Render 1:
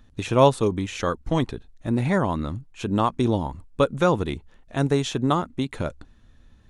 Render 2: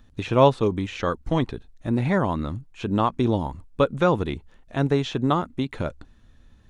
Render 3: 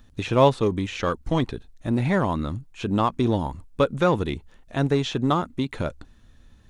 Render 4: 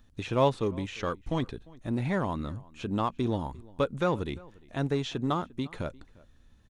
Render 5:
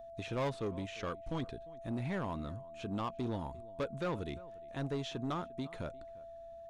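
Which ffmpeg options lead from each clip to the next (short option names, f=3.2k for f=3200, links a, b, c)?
-filter_complex "[0:a]acrossover=split=5000[a][b];[b]acompressor=threshold=-59dB:ratio=4:attack=1:release=60[c];[a][c]amix=inputs=2:normalize=0"
-filter_complex "[0:a]asplit=2[a][b];[b]asoftclip=type=hard:threshold=-22.5dB,volume=-10.5dB[c];[a][c]amix=inputs=2:normalize=0,highshelf=f=4.7k:g=5,volume=-1.5dB"
-filter_complex "[0:a]asplit=2[a][b];[b]adelay=349.9,volume=-23dB,highshelf=f=4k:g=-7.87[c];[a][c]amix=inputs=2:normalize=0,volume=-7dB"
-af "aeval=exprs='val(0)+0.00891*sin(2*PI*670*n/s)':c=same,asoftclip=type=tanh:threshold=-23.5dB,volume=-6dB"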